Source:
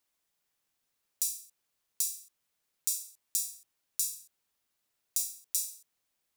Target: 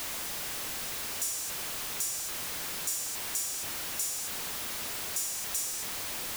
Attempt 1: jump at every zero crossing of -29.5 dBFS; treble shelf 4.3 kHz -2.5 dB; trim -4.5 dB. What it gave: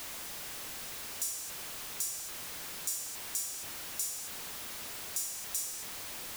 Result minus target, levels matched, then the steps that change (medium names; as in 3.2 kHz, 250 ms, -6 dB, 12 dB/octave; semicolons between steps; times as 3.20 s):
jump at every zero crossing: distortion -4 dB
change: jump at every zero crossing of -23.5 dBFS